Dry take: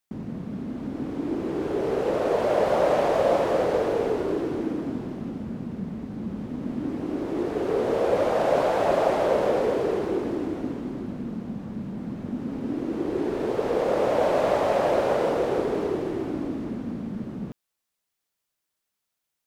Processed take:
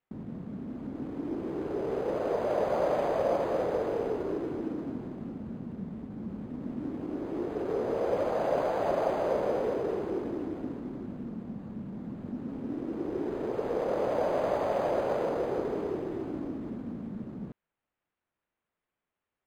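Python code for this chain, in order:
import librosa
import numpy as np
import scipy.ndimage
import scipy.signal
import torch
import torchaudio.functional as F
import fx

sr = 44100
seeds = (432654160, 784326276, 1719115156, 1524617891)

y = np.interp(np.arange(len(x)), np.arange(len(x))[::8], x[::8])
y = y * 10.0 ** (-6.0 / 20.0)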